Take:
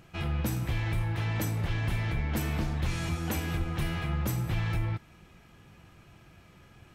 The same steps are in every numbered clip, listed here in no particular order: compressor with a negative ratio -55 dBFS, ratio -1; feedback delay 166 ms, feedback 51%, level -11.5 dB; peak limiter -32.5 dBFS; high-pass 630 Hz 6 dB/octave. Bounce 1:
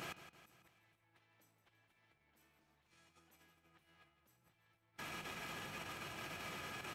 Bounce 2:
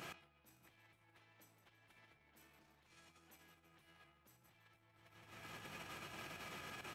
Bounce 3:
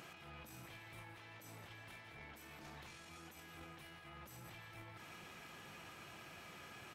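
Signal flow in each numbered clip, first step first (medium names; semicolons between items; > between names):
compressor with a negative ratio > feedback delay > peak limiter > high-pass; feedback delay > peak limiter > compressor with a negative ratio > high-pass; peak limiter > high-pass > compressor with a negative ratio > feedback delay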